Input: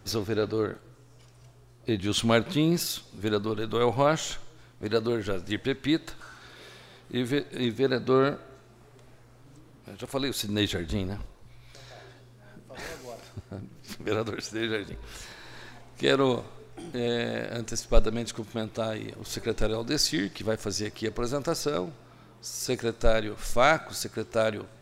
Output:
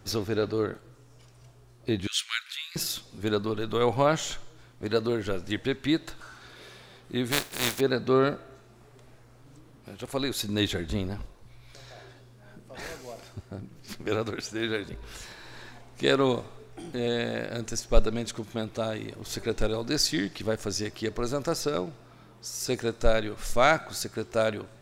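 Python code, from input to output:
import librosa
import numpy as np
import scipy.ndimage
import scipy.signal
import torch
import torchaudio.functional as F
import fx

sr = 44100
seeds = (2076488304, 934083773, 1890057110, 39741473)

y = fx.steep_highpass(x, sr, hz=1500.0, slope=36, at=(2.07, 2.76))
y = fx.spec_flatten(y, sr, power=0.32, at=(7.31, 7.79), fade=0.02)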